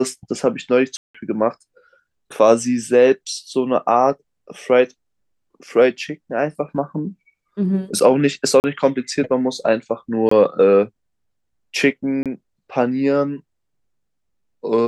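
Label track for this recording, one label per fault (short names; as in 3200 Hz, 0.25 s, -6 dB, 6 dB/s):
0.970000	1.150000	gap 0.175 s
3.540000	3.540000	gap 2.1 ms
8.600000	8.640000	gap 39 ms
10.290000	10.310000	gap 24 ms
12.230000	12.260000	gap 27 ms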